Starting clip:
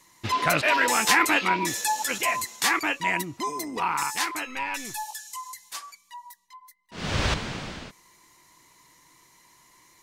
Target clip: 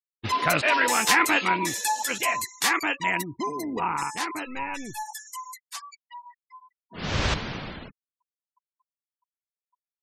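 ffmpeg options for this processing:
ffmpeg -i in.wav -filter_complex "[0:a]asplit=3[link_01][link_02][link_03];[link_01]afade=type=out:start_time=3.35:duration=0.02[link_04];[link_02]tiltshelf=frequency=850:gain=5,afade=type=in:start_time=3.35:duration=0.02,afade=type=out:start_time=4.96:duration=0.02[link_05];[link_03]afade=type=in:start_time=4.96:duration=0.02[link_06];[link_04][link_05][link_06]amix=inputs=3:normalize=0,asettb=1/sr,asplit=3[link_07][link_08][link_09];[link_07]atrim=end=6.024[link_10];[link_08]atrim=start=6.02:end=7.03,asetpts=PTS-STARTPTS,afade=type=in:duration=0.004:curve=qsin,afade=type=out:start_time=1.006:duration=0.004:curve=qsin,lowpass=5700[link_11];[link_09]atrim=start=7.026[link_12];[link_10][link_11]acrossfade=duration=0.004:curve1=hsin:curve2=qsin[link_13];[link_13][link_12]acrossfade=duration=0.004:curve1=qsin:curve2=hsin,afftfilt=real='re*gte(hypot(re,im),0.0112)':imag='im*gte(hypot(re,im),0.0112)':win_size=1024:overlap=0.75" out.wav

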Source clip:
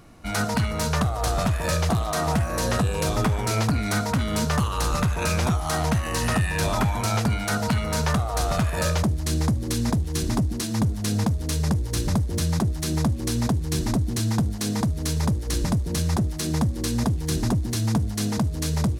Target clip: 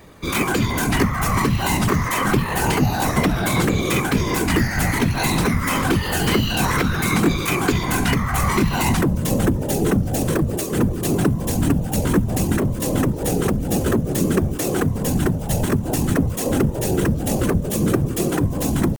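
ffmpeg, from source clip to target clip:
ffmpeg -i in.wav -af "asetrate=72056,aresample=44100,atempo=0.612027,acontrast=40,afftfilt=real='hypot(re,im)*cos(2*PI*random(0))':imag='hypot(re,im)*sin(2*PI*random(1))':win_size=512:overlap=0.75,volume=5dB" out.wav

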